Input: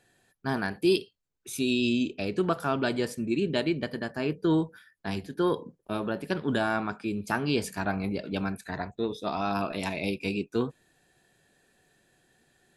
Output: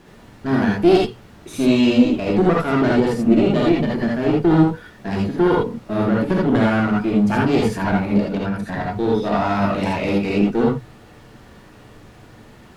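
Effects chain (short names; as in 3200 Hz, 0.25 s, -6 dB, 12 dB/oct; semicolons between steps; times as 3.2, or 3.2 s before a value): added noise pink -58 dBFS; one-sided clip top -35.5 dBFS; LPF 2100 Hz 6 dB/oct; bell 230 Hz +5.5 dB 1.7 oct; notches 60/120 Hz; non-linear reverb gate 0.1 s rising, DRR -3 dB; 8.22–8.96 compressor, threshold -28 dBFS, peak gain reduction 5 dB; gain +8.5 dB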